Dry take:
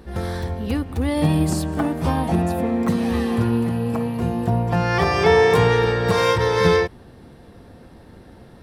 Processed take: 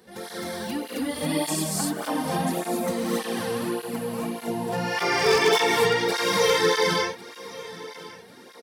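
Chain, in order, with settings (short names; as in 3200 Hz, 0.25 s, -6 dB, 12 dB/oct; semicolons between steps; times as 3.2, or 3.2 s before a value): HPF 260 Hz 12 dB/oct; bell 960 Hz -2 dB 1.2 oct; notch 2600 Hz, Q 23; on a send: feedback echo 1.097 s, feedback 34%, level -18 dB; on the sum: non-linear reverb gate 0.3 s rising, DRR -3 dB; wavefolder -6.5 dBFS; high shelf 3300 Hz +10 dB; tape flanging out of phase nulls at 1.7 Hz, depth 3.7 ms; gain -4.5 dB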